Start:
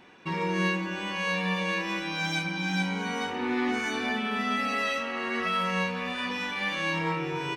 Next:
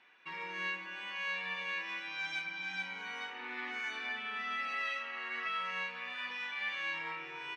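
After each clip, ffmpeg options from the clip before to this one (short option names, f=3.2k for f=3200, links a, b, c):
-af "bandpass=f=2.1k:t=q:w=1.1:csg=0,volume=-5.5dB"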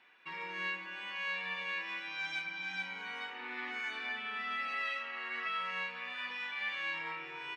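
-af "bandreject=f=6k:w=15"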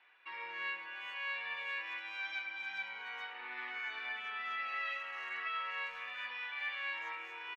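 -filter_complex "[0:a]highpass=530,lowpass=3.8k,asplit=2[a][b];[b]adelay=400,highpass=300,lowpass=3.4k,asoftclip=type=hard:threshold=-35.5dB,volume=-16dB[c];[a][c]amix=inputs=2:normalize=0,volume=-1.5dB"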